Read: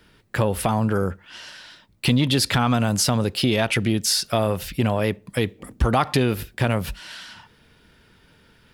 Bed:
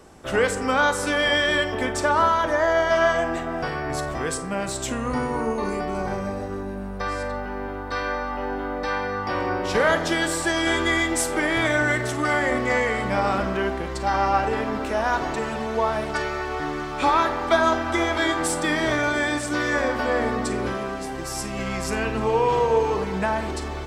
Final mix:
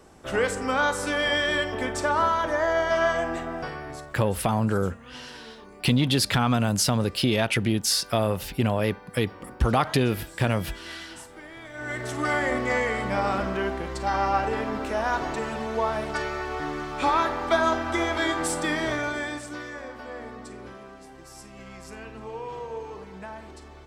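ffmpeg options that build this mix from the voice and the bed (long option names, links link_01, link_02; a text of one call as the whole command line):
ffmpeg -i stem1.wav -i stem2.wav -filter_complex "[0:a]adelay=3800,volume=-2.5dB[link_01];[1:a]volume=14.5dB,afade=type=out:start_time=3.44:duration=0.76:silence=0.133352,afade=type=in:start_time=11.73:duration=0.51:silence=0.125893,afade=type=out:start_time=18.64:duration=1.1:silence=0.237137[link_02];[link_01][link_02]amix=inputs=2:normalize=0" out.wav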